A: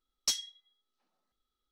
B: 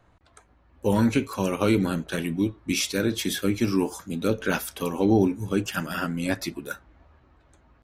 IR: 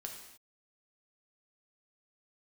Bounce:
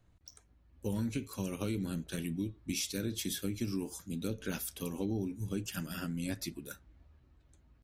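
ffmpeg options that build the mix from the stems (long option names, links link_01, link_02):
-filter_complex "[0:a]alimiter=level_in=5.5dB:limit=-24dB:level=0:latency=1:release=51,volume=-5.5dB,bandpass=frequency=5700:width_type=q:width=13:csg=0,aeval=exprs='0.0266*(cos(1*acos(clip(val(0)/0.0266,-1,1)))-cos(1*PI/2))+0.00841*(cos(3*acos(clip(val(0)/0.0266,-1,1)))-cos(3*PI/2))':channel_layout=same,volume=-1.5dB[link_01];[1:a]volume=-3.5dB[link_02];[link_01][link_02]amix=inputs=2:normalize=0,equalizer=frequency=980:width=0.4:gain=-13.5,acompressor=threshold=-31dB:ratio=5"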